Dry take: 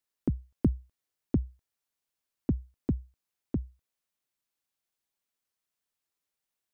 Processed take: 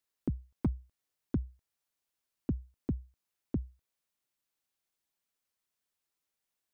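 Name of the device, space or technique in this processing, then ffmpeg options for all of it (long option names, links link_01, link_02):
clipper into limiter: -af "asoftclip=type=hard:threshold=-17.5dB,alimiter=limit=-22.5dB:level=0:latency=1:release=351"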